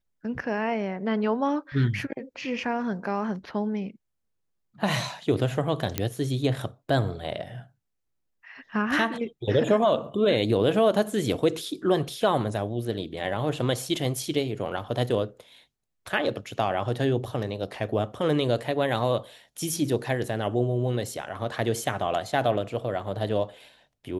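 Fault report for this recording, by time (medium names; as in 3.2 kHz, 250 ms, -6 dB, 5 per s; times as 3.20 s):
5.98 s: pop -9 dBFS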